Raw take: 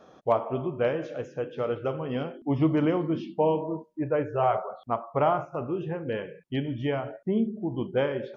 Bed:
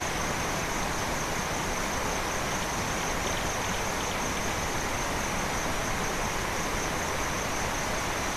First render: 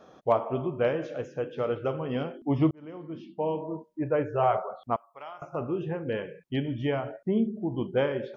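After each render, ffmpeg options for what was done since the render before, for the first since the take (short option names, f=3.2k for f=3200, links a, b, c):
-filter_complex "[0:a]asettb=1/sr,asplit=3[a][b][c];[a]atrim=end=4.964[d];[b]atrim=start=4.96:end=5.42,asetpts=PTS-STARTPTS,afade=t=in:d=0.004:c=qsin,afade=t=out:st=0.456:d=0.004:c=qsin,aderivative[e];[c]atrim=start=5.416[f];[d][e]acrossfade=d=0.004:c1=hsin:c2=qsin[g];[g][f]acrossfade=d=0.004:c1=qsin:c2=hsin,asplit=2[h][i];[h]atrim=end=2.71,asetpts=PTS-STARTPTS,afade=t=out:st=2.706:d=0.004:c=hsin[j];[i]atrim=start=2.71,asetpts=PTS-STARTPTS,afade=t=in:d=1.42[k];[j][k]concat=n=2:v=0:a=1"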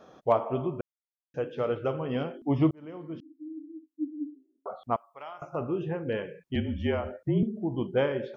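-filter_complex "[0:a]asettb=1/sr,asplit=3[a][b][c];[a]atrim=end=3.204[d];[b]atrim=start=3.2:end=4.66,asetpts=PTS-STARTPTS,afade=t=in:d=0.004:c=qsin,afade=t=out:st=1.456:d=0.004:c=qsin,asuperpass=centerf=290:order=8:qfactor=5.1[e];[c]atrim=start=4.656[f];[d][e]acrossfade=d=0.004:c1=hsin:c2=qsin[g];[g][f]acrossfade=d=0.004:c1=qsin:c2=hsin,asettb=1/sr,asplit=3[h][i][j];[h]atrim=end=6.554[k];[i]atrim=start=6.55:end=7.43,asetpts=PTS-STARTPTS,afade=t=in:d=0.004:c=qsin,afade=t=out:st=0.876:d=0.004:c=qsin,afreqshift=-43[l];[j]atrim=start=7.426[m];[k][l]acrossfade=d=0.004:c1=hsin:c2=qsin[n];[n][m]acrossfade=d=0.004:c1=qsin:c2=hsin,asplit=3[o][p][q];[o]atrim=end=0.81,asetpts=PTS-STARTPTS,afade=t=out:st=0.806:d=0.004:c=hsin[r];[p]atrim=start=0.81:end=1.34,asetpts=PTS-STARTPTS,volume=0[s];[q]atrim=start=1.34,asetpts=PTS-STARTPTS,afade=t=in:d=0.004:c=hsin[t];[r][s][t]concat=n=3:v=0:a=1"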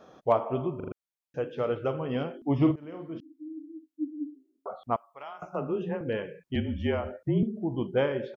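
-filter_complex "[0:a]asplit=3[a][b][c];[a]afade=t=out:st=2.6:d=0.02[d];[b]asplit=2[e][f];[f]adelay=48,volume=-6dB[g];[e][g]amix=inputs=2:normalize=0,afade=t=in:st=2.6:d=0.02,afade=t=out:st=3.17:d=0.02[h];[c]afade=t=in:st=3.17:d=0.02[i];[d][h][i]amix=inputs=3:normalize=0,asettb=1/sr,asplit=3[j][k][l];[j]atrim=end=5.234[m];[k]atrim=start=5.23:end=6.01,asetpts=PTS-STARTPTS,afade=t=in:d=0.004:c=qsin,afade=t=out:st=0.776:d=0.004:c=qsin,afreqshift=23[n];[l]atrim=start=6.006[o];[m][n]acrossfade=d=0.004:c1=hsin:c2=qsin[p];[p][o]acrossfade=d=0.004:c1=qsin:c2=hsin,asplit=5[q][r][s][t][u];[q]atrim=end=0.802[v];[r]atrim=start=0.758:end=0.802[w];[s]atrim=start=0.758:end=0.802[x];[t]atrim=start=0.758:end=0.802[y];[u]atrim=start=0.918[z];[v][w]acrossfade=d=0.004:c1=hsin:c2=hsin[aa];[aa][x]acrossfade=d=0.004:c1=hsin:c2=hsin[ab];[ab][y]acrossfade=d=0.004:c1=hsin:c2=hsin[ac];[ac][z]acrossfade=d=0.004:c1=hsin:c2=hsin"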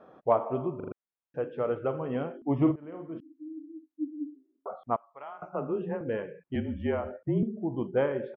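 -af "lowpass=1.8k,lowshelf=f=110:g=-7.5"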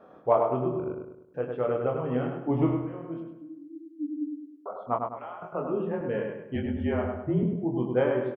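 -filter_complex "[0:a]asplit=2[a][b];[b]adelay=24,volume=-4.5dB[c];[a][c]amix=inputs=2:normalize=0,asplit=2[d][e];[e]adelay=102,lowpass=f=2.9k:p=1,volume=-4dB,asplit=2[f][g];[g]adelay=102,lowpass=f=2.9k:p=1,volume=0.45,asplit=2[h][i];[i]adelay=102,lowpass=f=2.9k:p=1,volume=0.45,asplit=2[j][k];[k]adelay=102,lowpass=f=2.9k:p=1,volume=0.45,asplit=2[l][m];[m]adelay=102,lowpass=f=2.9k:p=1,volume=0.45,asplit=2[n][o];[o]adelay=102,lowpass=f=2.9k:p=1,volume=0.45[p];[f][h][j][l][n][p]amix=inputs=6:normalize=0[q];[d][q]amix=inputs=2:normalize=0"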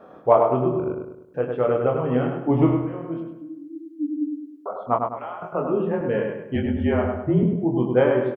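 -af "volume=6.5dB"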